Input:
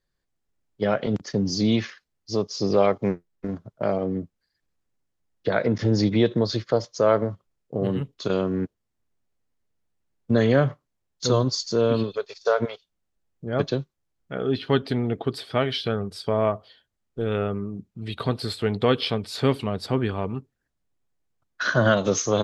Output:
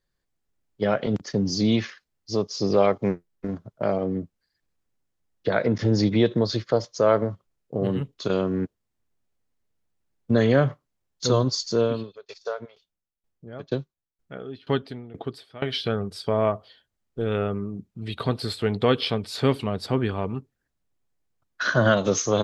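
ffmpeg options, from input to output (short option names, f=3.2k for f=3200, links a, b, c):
-filter_complex "[0:a]asettb=1/sr,asplit=3[a][b][c];[a]atrim=end=11.814[d];[b]atrim=start=11.81:end=15.73,asetpts=PTS-STARTPTS,afade=t=in:d=0.004:c=qsin,afade=t=out:st=3.916:d=0.004:c=qsin,aeval=exprs='val(0)*pow(10,-20*if(lt(mod(2.1*n/s,1),2*abs(2.1)/1000),1-mod(2.1*n/s,1)/(2*abs(2.1)/1000),(mod(2.1*n/s,1)-2*abs(2.1)/1000)/(1-2*abs(2.1)/1000))/20)':c=same[e];[c]atrim=start=15.726[f];[d][e]acrossfade=d=0.004:c1=hsin:c2=qsin[g];[g][f]acrossfade=d=0.004:c1=qsin:c2=hsin"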